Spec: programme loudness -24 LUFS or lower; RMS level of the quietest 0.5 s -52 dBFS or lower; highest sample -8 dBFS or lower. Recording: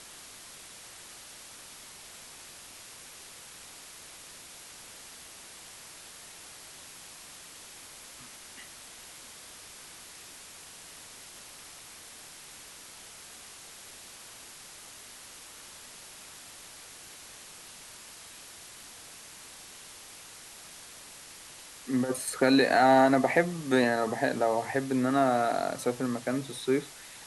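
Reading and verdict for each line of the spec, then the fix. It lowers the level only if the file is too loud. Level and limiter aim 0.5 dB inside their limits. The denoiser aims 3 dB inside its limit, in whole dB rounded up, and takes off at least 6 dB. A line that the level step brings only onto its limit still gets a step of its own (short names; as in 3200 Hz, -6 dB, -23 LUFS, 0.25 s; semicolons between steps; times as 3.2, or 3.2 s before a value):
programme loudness -26.5 LUFS: OK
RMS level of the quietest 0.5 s -48 dBFS: fail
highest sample -10.5 dBFS: OK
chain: denoiser 7 dB, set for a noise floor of -48 dBFS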